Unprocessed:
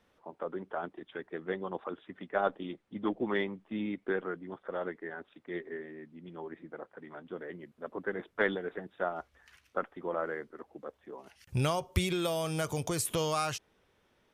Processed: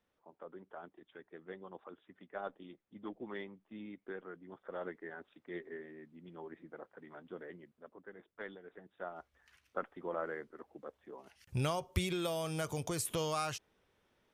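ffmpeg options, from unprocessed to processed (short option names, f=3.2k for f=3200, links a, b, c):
-af "volume=7dB,afade=t=in:st=4.24:d=0.63:silence=0.446684,afade=t=out:st=7.43:d=0.54:silence=0.266073,afade=t=in:st=8.62:d=1.3:silence=0.237137"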